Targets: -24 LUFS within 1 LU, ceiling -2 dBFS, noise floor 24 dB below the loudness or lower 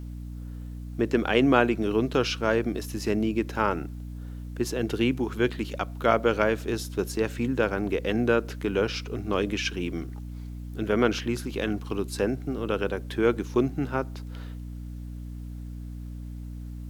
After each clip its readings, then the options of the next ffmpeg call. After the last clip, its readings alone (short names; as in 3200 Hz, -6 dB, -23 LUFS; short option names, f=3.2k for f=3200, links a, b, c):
hum 60 Hz; harmonics up to 300 Hz; hum level -35 dBFS; loudness -27.0 LUFS; peak -5.0 dBFS; loudness target -24.0 LUFS
-> -af "bandreject=f=60:t=h:w=6,bandreject=f=120:t=h:w=6,bandreject=f=180:t=h:w=6,bandreject=f=240:t=h:w=6,bandreject=f=300:t=h:w=6"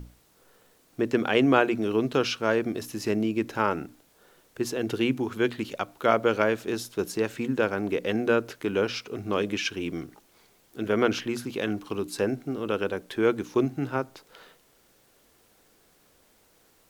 hum none; loudness -27.0 LUFS; peak -5.5 dBFS; loudness target -24.0 LUFS
-> -af "volume=3dB"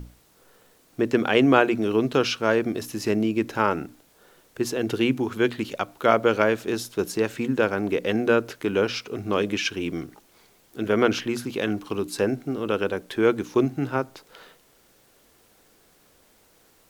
loudness -24.0 LUFS; peak -2.5 dBFS; noise floor -59 dBFS